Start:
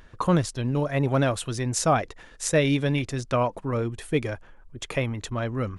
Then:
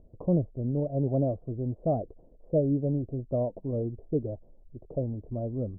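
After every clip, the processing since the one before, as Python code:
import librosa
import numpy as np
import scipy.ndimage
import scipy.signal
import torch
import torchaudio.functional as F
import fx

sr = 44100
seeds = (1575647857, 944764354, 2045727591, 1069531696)

y = scipy.signal.sosfilt(scipy.signal.ellip(4, 1.0, 70, 650.0, 'lowpass', fs=sr, output='sos'), x)
y = y * 10.0 ** (-3.0 / 20.0)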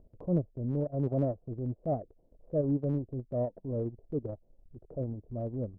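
y = fx.transient(x, sr, attack_db=-6, sustain_db=-10)
y = y * 10.0 ** (-1.5 / 20.0)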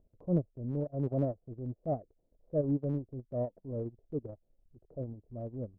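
y = fx.upward_expand(x, sr, threshold_db=-43.0, expansion=1.5)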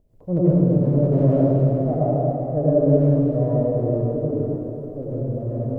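y = fx.rev_plate(x, sr, seeds[0], rt60_s=3.7, hf_ratio=0.95, predelay_ms=75, drr_db=-10.0)
y = y * 10.0 ** (5.5 / 20.0)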